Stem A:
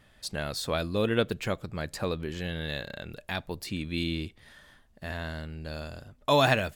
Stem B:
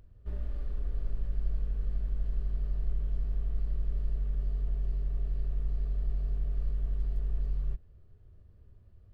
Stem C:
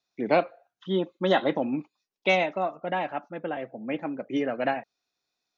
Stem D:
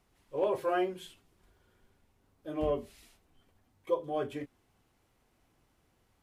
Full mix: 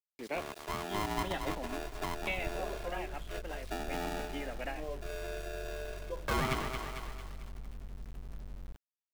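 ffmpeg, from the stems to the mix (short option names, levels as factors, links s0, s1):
-filter_complex "[0:a]afwtdn=0.0501,aeval=exprs='val(0)*sgn(sin(2*PI*520*n/s))':c=same,volume=0.794,asplit=2[s0][s1];[s1]volume=0.335[s2];[1:a]aeval=exprs='0.126*(cos(1*acos(clip(val(0)/0.126,-1,1)))-cos(1*PI/2))+0.0447*(cos(3*acos(clip(val(0)/0.126,-1,1)))-cos(3*PI/2))+0.0158*(cos(5*acos(clip(val(0)/0.126,-1,1)))-cos(5*PI/2))+0.00447*(cos(8*acos(clip(val(0)/0.126,-1,1)))-cos(8*PI/2))':c=same,adelay=1000,volume=0.841[s3];[2:a]equalizer=f=2600:t=o:w=1.2:g=9,volume=0.224[s4];[3:a]adelay=2200,volume=0.316[s5];[s2]aecho=0:1:224|448|672|896|1120|1344:1|0.4|0.16|0.064|0.0256|0.0102[s6];[s0][s3][s4][s5][s6]amix=inputs=5:normalize=0,bass=f=250:g=-6,treble=f=4000:g=-3,acrossover=split=270[s7][s8];[s8]acompressor=threshold=0.0141:ratio=2[s9];[s7][s9]amix=inputs=2:normalize=0,aeval=exprs='val(0)*gte(abs(val(0)),0.00447)':c=same"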